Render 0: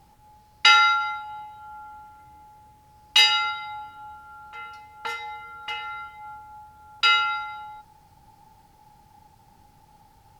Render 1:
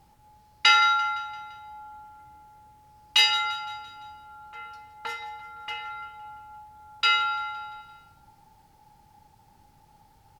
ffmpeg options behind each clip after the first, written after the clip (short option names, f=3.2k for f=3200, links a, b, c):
-af "aecho=1:1:171|342|513|684|855:0.15|0.0793|0.042|0.0223|0.0118,volume=-3dB"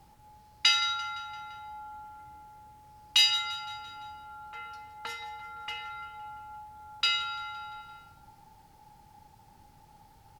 -filter_complex "[0:a]acrossover=split=260|3000[a][b][c];[b]acompressor=threshold=-42dB:ratio=2.5[d];[a][d][c]amix=inputs=3:normalize=0,volume=1dB"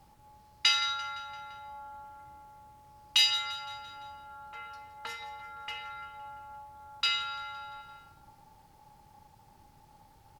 -af "tremolo=f=270:d=0.4"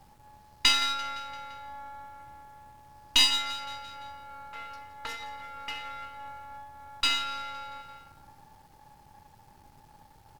-af "aeval=exprs='if(lt(val(0),0),0.447*val(0),val(0))':c=same,volume=5dB"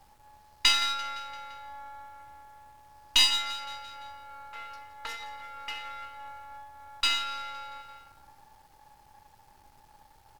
-af "equalizer=f=160:t=o:w=2.4:g=-9"